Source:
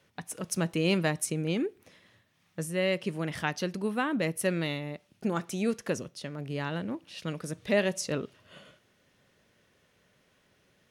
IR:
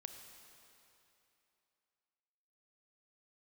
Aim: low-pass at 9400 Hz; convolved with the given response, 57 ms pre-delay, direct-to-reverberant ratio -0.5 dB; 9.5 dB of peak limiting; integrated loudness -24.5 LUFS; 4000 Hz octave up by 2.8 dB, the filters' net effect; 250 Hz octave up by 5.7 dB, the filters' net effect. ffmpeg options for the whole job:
-filter_complex "[0:a]lowpass=9.4k,equalizer=f=250:t=o:g=8,equalizer=f=4k:t=o:g=4,alimiter=limit=-20.5dB:level=0:latency=1,asplit=2[a][b];[1:a]atrim=start_sample=2205,adelay=57[c];[b][c]afir=irnorm=-1:irlink=0,volume=5dB[d];[a][d]amix=inputs=2:normalize=0,volume=3.5dB"

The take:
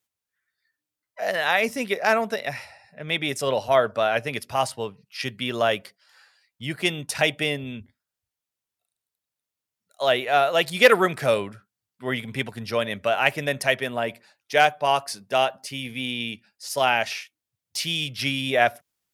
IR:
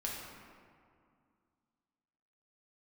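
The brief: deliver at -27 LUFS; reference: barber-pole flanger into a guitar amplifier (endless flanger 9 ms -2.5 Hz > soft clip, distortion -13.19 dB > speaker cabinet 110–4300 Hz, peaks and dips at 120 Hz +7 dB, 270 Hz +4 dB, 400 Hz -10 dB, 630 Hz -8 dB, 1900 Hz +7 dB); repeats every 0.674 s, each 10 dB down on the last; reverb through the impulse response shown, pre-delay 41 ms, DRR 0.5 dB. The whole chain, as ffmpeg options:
-filter_complex "[0:a]aecho=1:1:674|1348|2022|2696:0.316|0.101|0.0324|0.0104,asplit=2[a][b];[1:a]atrim=start_sample=2205,adelay=41[c];[b][c]afir=irnorm=-1:irlink=0,volume=-2.5dB[d];[a][d]amix=inputs=2:normalize=0,asplit=2[e][f];[f]adelay=9,afreqshift=-2.5[g];[e][g]amix=inputs=2:normalize=1,asoftclip=threshold=-16.5dB,highpass=110,equalizer=f=120:t=q:w=4:g=7,equalizer=f=270:t=q:w=4:g=4,equalizer=f=400:t=q:w=4:g=-10,equalizer=f=630:t=q:w=4:g=-8,equalizer=f=1.9k:t=q:w=4:g=7,lowpass=f=4.3k:w=0.5412,lowpass=f=4.3k:w=1.3066,volume=-1dB"

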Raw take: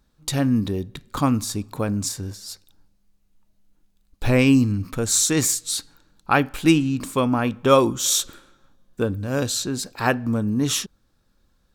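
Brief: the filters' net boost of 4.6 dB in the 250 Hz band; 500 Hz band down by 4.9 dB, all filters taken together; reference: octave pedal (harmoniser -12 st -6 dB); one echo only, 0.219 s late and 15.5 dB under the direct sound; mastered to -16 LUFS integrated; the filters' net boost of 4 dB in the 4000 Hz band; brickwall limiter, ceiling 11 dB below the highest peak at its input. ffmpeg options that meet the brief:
-filter_complex "[0:a]equalizer=f=250:t=o:g=7.5,equalizer=f=500:t=o:g=-9,equalizer=f=4k:t=o:g=5,alimiter=limit=-13.5dB:level=0:latency=1,aecho=1:1:219:0.168,asplit=2[a][b];[b]asetrate=22050,aresample=44100,atempo=2,volume=-6dB[c];[a][c]amix=inputs=2:normalize=0,volume=6.5dB"

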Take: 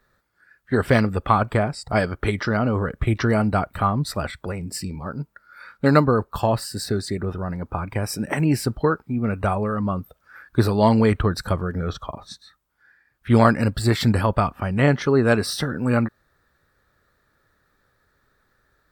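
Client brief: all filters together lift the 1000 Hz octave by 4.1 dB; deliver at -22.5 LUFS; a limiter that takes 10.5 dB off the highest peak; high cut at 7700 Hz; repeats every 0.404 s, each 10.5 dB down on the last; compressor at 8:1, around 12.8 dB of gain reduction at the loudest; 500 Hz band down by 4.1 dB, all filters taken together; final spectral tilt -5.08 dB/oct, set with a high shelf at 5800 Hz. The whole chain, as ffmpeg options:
-af "lowpass=7.7k,equalizer=f=500:t=o:g=-7.5,equalizer=f=1k:t=o:g=7,highshelf=f=5.8k:g=5.5,acompressor=threshold=-22dB:ratio=8,alimiter=limit=-20dB:level=0:latency=1,aecho=1:1:404|808|1212:0.299|0.0896|0.0269,volume=7.5dB"

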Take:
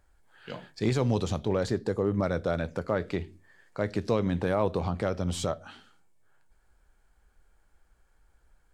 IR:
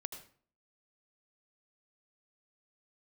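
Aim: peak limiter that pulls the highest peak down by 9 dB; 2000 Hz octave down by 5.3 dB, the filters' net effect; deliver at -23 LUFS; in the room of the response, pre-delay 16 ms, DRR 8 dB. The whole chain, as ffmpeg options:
-filter_complex "[0:a]equalizer=f=2k:t=o:g=-7.5,alimiter=limit=-22.5dB:level=0:latency=1,asplit=2[a][b];[1:a]atrim=start_sample=2205,adelay=16[c];[b][c]afir=irnorm=-1:irlink=0,volume=-6dB[d];[a][d]amix=inputs=2:normalize=0,volume=10.5dB"

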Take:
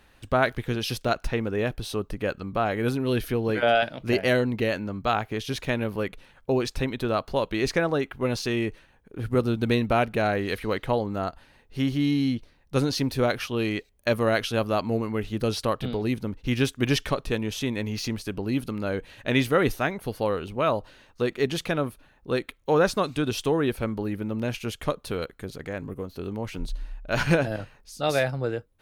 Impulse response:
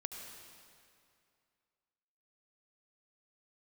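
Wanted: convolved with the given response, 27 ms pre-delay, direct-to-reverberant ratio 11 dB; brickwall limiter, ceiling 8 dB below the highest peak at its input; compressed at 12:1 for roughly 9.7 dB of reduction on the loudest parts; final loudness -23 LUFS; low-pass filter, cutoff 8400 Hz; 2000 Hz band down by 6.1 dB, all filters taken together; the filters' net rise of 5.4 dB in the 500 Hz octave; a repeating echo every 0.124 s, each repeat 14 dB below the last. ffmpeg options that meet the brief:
-filter_complex "[0:a]lowpass=8.4k,equalizer=f=500:t=o:g=7,equalizer=f=2k:t=o:g=-9,acompressor=threshold=-22dB:ratio=12,alimiter=limit=-20dB:level=0:latency=1,aecho=1:1:124|248:0.2|0.0399,asplit=2[a][b];[1:a]atrim=start_sample=2205,adelay=27[c];[b][c]afir=irnorm=-1:irlink=0,volume=-9.5dB[d];[a][d]amix=inputs=2:normalize=0,volume=7.5dB"

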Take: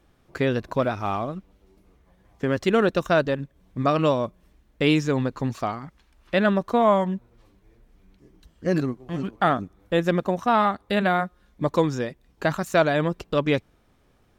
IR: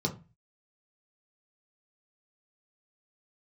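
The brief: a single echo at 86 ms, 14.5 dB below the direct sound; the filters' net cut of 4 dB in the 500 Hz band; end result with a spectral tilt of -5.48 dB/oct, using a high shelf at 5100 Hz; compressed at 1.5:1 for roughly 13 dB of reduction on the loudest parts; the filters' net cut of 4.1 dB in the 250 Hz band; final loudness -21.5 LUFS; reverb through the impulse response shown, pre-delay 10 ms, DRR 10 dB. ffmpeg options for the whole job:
-filter_complex "[0:a]equalizer=f=250:t=o:g=-4.5,equalizer=f=500:t=o:g=-4,highshelf=f=5.1k:g=-3.5,acompressor=threshold=-55dB:ratio=1.5,aecho=1:1:86:0.188,asplit=2[a][b];[1:a]atrim=start_sample=2205,adelay=10[c];[b][c]afir=irnorm=-1:irlink=0,volume=-16dB[d];[a][d]amix=inputs=2:normalize=0,volume=16dB"

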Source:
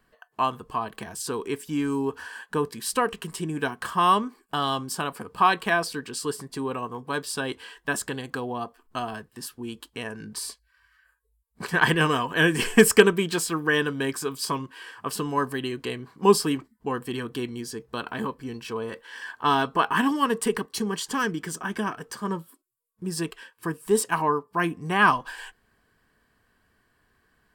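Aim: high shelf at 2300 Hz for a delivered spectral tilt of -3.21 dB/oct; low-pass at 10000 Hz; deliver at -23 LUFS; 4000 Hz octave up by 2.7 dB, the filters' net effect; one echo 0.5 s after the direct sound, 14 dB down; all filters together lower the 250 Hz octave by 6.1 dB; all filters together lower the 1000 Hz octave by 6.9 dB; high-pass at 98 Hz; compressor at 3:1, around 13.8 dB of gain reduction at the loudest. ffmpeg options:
-af "highpass=98,lowpass=10k,equalizer=f=250:t=o:g=-7.5,equalizer=f=1k:t=o:g=-7.5,highshelf=f=2.3k:g=-3.5,equalizer=f=4k:t=o:g=8,acompressor=threshold=-31dB:ratio=3,aecho=1:1:500:0.2,volume=12dB"

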